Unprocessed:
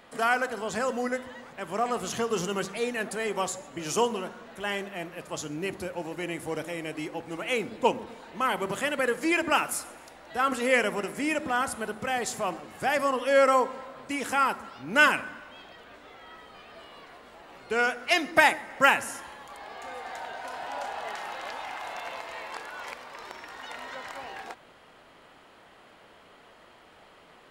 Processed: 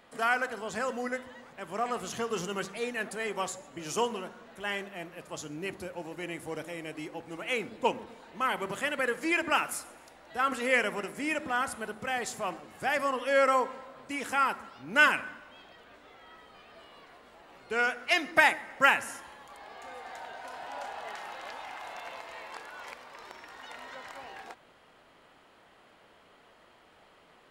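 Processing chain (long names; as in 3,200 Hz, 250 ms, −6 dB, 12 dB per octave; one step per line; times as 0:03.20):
dynamic equaliser 1,900 Hz, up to +4 dB, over −36 dBFS, Q 0.79
level −5 dB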